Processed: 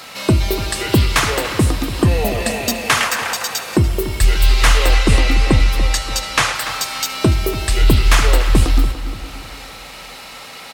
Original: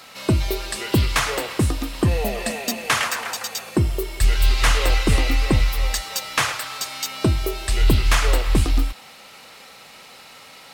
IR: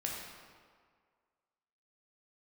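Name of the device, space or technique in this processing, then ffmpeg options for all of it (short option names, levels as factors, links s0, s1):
ducked reverb: -filter_complex "[0:a]asettb=1/sr,asplit=3[s0][s1][s2];[s0]atrim=end=4.934[s3];[s1]atrim=start=4.93:end=6.55,asetpts=PTS-STARTPTS,afade=t=in:d=0.004:c=qsin,afade=t=out:st=1.616:d=0.004:c=qsin,lowpass=11000[s4];[s2]atrim=start=6.546[s5];[s3][s4]acrossfade=d=0.004:c1=hsin:c2=qsin[s6];[s6][s5]acrossfade=d=0.004:c1=qsin:c2=hsin,asplit=2[s7][s8];[s8]adelay=290,lowpass=f=4800:p=1,volume=0.224,asplit=2[s9][s10];[s10]adelay=290,lowpass=f=4800:p=1,volume=0.39,asplit=2[s11][s12];[s12]adelay=290,lowpass=f=4800:p=1,volume=0.39,asplit=2[s13][s14];[s14]adelay=290,lowpass=f=4800:p=1,volume=0.39[s15];[s7][s9][s11][s13][s15]amix=inputs=5:normalize=0,asplit=3[s16][s17][s18];[1:a]atrim=start_sample=2205[s19];[s17][s19]afir=irnorm=-1:irlink=0[s20];[s18]apad=whole_len=499719[s21];[s20][s21]sidechaincompress=threshold=0.0251:ratio=8:attack=16:release=288,volume=0.75[s22];[s16][s22]amix=inputs=2:normalize=0,volume=1.58"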